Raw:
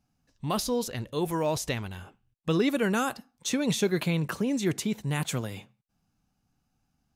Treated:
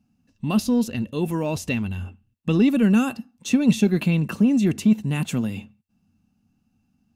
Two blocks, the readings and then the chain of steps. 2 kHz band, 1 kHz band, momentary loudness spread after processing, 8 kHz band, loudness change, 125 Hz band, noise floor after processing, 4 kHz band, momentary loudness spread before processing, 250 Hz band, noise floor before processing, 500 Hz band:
+2.0 dB, -1.0 dB, 13 LU, -1.5 dB, +7.0 dB, +7.0 dB, -69 dBFS, -0.5 dB, 11 LU, +10.0 dB, -77 dBFS, +1.0 dB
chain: small resonant body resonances 220/2700 Hz, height 16 dB, ringing for 40 ms; in parallel at -10 dB: soft clip -16.5 dBFS, distortion -10 dB; on the sum: bell 90 Hz +13.5 dB 0.26 oct; gain -3.5 dB

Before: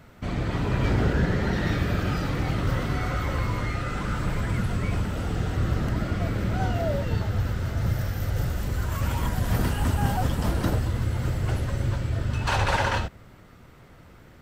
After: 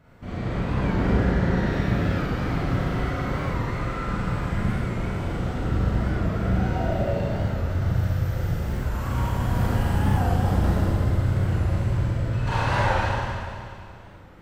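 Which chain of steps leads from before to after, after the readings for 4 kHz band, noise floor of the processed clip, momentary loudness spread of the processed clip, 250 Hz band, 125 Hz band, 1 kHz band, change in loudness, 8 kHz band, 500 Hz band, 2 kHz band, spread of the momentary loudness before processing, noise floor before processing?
-2.5 dB, -42 dBFS, 6 LU, +3.0 dB, +2.0 dB, +2.0 dB, +2.0 dB, n/a, +2.5 dB, 0.0 dB, 5 LU, -50 dBFS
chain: high shelf 2800 Hz -8.5 dB; Schroeder reverb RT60 2.4 s, combs from 33 ms, DRR -8.5 dB; record warp 45 rpm, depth 100 cents; gain -6.5 dB

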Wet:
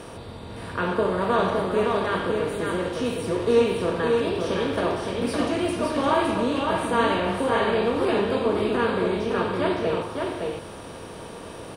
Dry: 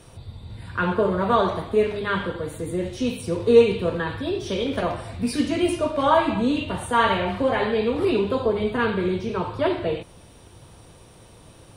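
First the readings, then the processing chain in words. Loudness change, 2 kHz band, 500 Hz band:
-1.0 dB, -0.5 dB, -1.0 dB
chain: per-bin compression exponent 0.6; on a send: echo 0.563 s -4 dB; on the sum: gain -6.5 dB

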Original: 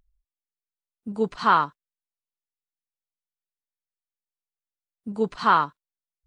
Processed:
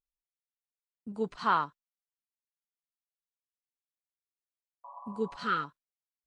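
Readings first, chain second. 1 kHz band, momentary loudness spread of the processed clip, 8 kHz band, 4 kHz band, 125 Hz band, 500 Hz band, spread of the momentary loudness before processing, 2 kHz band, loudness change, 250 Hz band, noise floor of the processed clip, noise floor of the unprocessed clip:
-10.0 dB, 18 LU, n/a, -8.0 dB, -8.0 dB, -8.0 dB, 17 LU, -8.0 dB, -9.0 dB, -8.0 dB, under -85 dBFS, under -85 dBFS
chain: spectral repair 4.87–5.62, 550–1200 Hz after; gate with hold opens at -44 dBFS; gain -8 dB

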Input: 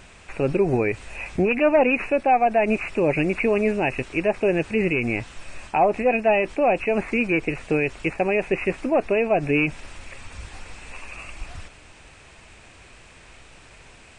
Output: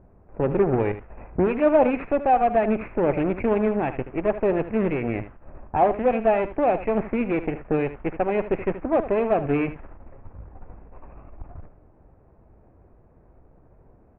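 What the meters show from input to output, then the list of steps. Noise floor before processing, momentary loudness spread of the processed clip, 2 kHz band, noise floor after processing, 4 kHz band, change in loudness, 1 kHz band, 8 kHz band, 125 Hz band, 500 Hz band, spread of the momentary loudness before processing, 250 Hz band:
-49 dBFS, 8 LU, -9.5 dB, -55 dBFS, under -10 dB, -1.5 dB, -0.5 dB, n/a, -0.5 dB, -1.0 dB, 21 LU, -0.5 dB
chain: added harmonics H 3 -18 dB, 8 -20 dB, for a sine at -9.5 dBFS; low-pass opened by the level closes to 620 Hz, open at -16.5 dBFS; Gaussian blur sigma 4.8 samples; on a send: echo 77 ms -13 dB; on the sum: gain +2 dB

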